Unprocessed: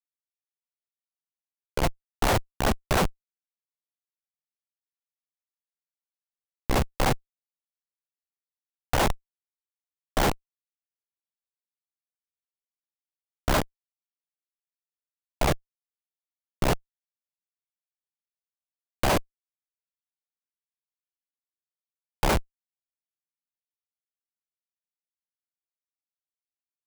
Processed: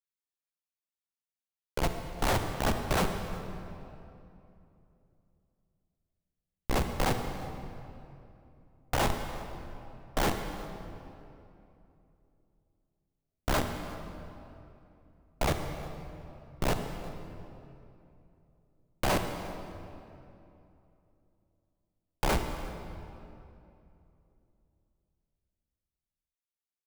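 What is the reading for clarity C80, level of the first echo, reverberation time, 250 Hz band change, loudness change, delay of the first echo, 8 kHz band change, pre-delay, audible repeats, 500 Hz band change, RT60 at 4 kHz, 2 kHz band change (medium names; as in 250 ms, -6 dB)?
7.0 dB, -22.0 dB, 2.8 s, -3.0 dB, -6.0 dB, 355 ms, -4.5 dB, 33 ms, 1, -4.0 dB, 1.9 s, -4.0 dB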